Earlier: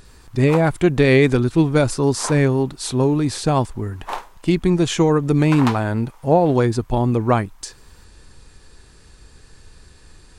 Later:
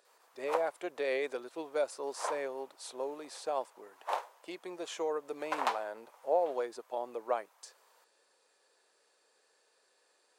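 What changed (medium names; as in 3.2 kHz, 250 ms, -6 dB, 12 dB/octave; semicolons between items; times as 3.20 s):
speech -9.0 dB; master: add ladder high-pass 470 Hz, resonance 50%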